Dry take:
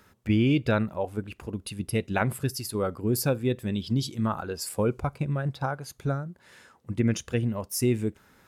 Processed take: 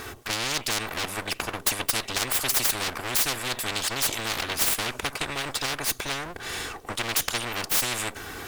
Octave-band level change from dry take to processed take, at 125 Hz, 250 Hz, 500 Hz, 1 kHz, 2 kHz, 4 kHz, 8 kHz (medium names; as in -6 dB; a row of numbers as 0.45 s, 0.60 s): -12.5 dB, -11.5 dB, -6.0 dB, +3.5 dB, +8.0 dB, +12.5 dB, +11.0 dB